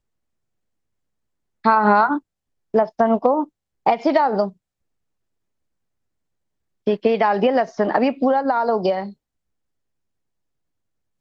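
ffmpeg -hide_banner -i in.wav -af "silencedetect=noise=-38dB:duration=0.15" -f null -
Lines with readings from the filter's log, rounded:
silence_start: 0.00
silence_end: 1.64 | silence_duration: 1.64
silence_start: 2.19
silence_end: 2.74 | silence_duration: 0.55
silence_start: 3.44
silence_end: 3.86 | silence_duration: 0.42
silence_start: 4.50
silence_end: 6.87 | silence_duration: 2.37
silence_start: 9.12
silence_end: 11.20 | silence_duration: 2.08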